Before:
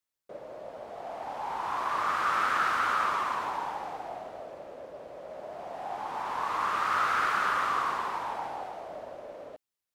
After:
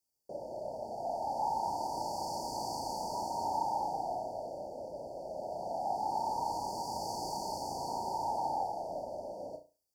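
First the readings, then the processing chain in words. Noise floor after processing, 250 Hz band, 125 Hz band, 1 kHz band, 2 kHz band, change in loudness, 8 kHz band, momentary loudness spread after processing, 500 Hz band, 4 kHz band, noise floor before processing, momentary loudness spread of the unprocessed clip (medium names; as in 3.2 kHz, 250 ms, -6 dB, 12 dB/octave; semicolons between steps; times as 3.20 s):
-77 dBFS, +1.5 dB, +2.5 dB, -4.5 dB, under -40 dB, -7.0 dB, +3.0 dB, 9 LU, +1.0 dB, -4.0 dB, under -85 dBFS, 18 LU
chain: peaking EQ 3.9 kHz +13 dB 0.29 oct; in parallel at -3 dB: peak limiter -26.5 dBFS, peak gain reduction 11 dB; on the sum: brick-wall FIR band-stop 960–4400 Hz; dynamic bell 450 Hz, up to -6 dB, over -52 dBFS, Q 2.2; on a send: flutter echo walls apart 5.9 m, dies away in 0.31 s; on the sum: trim -1.5 dB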